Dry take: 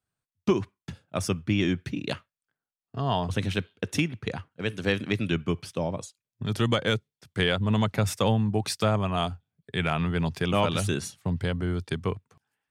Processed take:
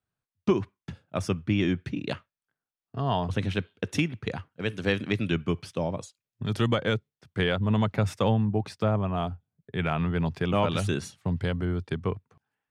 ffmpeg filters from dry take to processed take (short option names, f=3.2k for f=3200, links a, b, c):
-af "asetnsamples=n=441:p=0,asendcmd='3.75 lowpass f 5700;6.67 lowpass f 2300;8.45 lowpass f 1000;9.79 lowpass f 2100;10.69 lowpass f 4200;11.65 lowpass f 2000',lowpass=f=3.2k:p=1"